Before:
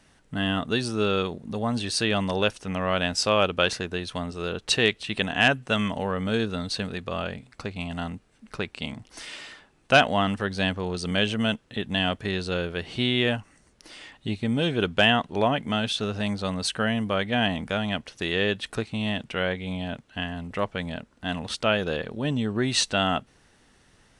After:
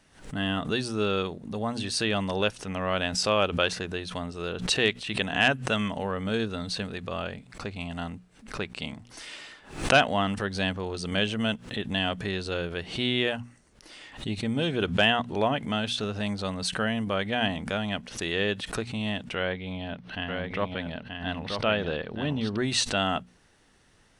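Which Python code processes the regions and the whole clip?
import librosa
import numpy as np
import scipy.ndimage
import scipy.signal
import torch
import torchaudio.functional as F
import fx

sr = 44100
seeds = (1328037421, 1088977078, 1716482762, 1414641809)

y = fx.chain(x, sr, fx.savgol(points=15),
    fx.echo_single(ms=930, db=-5.0), at=(19.35, 22.57))
y = fx.hum_notches(y, sr, base_hz=60, count=4)
y = fx.pre_swell(y, sr, db_per_s=120.0)
y = y * 10.0 ** (-2.5 / 20.0)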